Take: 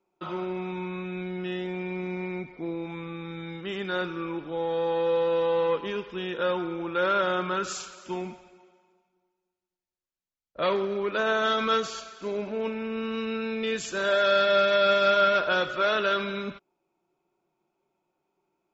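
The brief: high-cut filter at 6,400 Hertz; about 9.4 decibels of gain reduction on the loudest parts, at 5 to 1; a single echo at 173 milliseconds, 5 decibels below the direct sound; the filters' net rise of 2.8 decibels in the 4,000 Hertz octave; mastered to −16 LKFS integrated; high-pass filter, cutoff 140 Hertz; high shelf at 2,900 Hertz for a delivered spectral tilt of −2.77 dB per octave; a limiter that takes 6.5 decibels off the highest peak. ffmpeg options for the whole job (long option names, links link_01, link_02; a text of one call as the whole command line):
ffmpeg -i in.wav -af "highpass=140,lowpass=6400,highshelf=frequency=2900:gain=-6.5,equalizer=frequency=4000:width_type=o:gain=8.5,acompressor=threshold=-28dB:ratio=5,alimiter=level_in=0.5dB:limit=-24dB:level=0:latency=1,volume=-0.5dB,aecho=1:1:173:0.562,volume=16.5dB" out.wav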